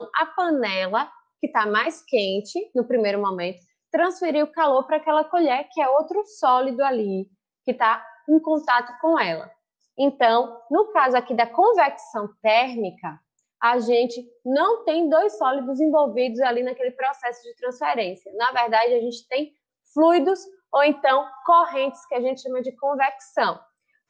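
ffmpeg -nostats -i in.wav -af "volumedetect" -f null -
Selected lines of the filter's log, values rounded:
mean_volume: -22.1 dB
max_volume: -6.3 dB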